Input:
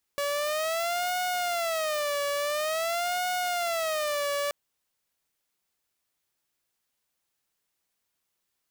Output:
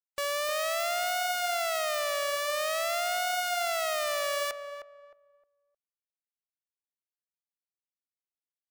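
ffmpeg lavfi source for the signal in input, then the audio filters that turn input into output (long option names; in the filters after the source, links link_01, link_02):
-f lavfi -i "aevalsrc='0.0631*(2*mod((648.5*t-77.5/(2*PI*0.48)*sin(2*PI*0.48*t)),1)-1)':duration=4.33:sample_rate=44100"
-filter_complex "[0:a]afftfilt=real='re*gte(hypot(re,im),0.00355)':imag='im*gte(hypot(re,im),0.00355)':win_size=1024:overlap=0.75,equalizer=frequency=200:width=0.66:gain=-10.5,asplit=2[link_01][link_02];[link_02]adelay=309,lowpass=frequency=1200:poles=1,volume=-7dB,asplit=2[link_03][link_04];[link_04]adelay=309,lowpass=frequency=1200:poles=1,volume=0.29,asplit=2[link_05][link_06];[link_06]adelay=309,lowpass=frequency=1200:poles=1,volume=0.29,asplit=2[link_07][link_08];[link_08]adelay=309,lowpass=frequency=1200:poles=1,volume=0.29[link_09];[link_01][link_03][link_05][link_07][link_09]amix=inputs=5:normalize=0"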